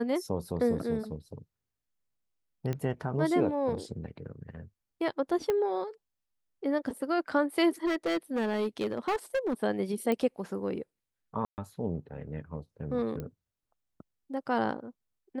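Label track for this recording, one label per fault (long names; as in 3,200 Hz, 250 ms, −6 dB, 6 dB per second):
2.730000	2.730000	click −21 dBFS
5.500000	5.500000	click −17 dBFS
7.850000	9.540000	clipping −25.5 dBFS
10.120000	10.120000	click −18 dBFS
11.450000	11.580000	drop-out 129 ms
13.200000	13.200000	click −25 dBFS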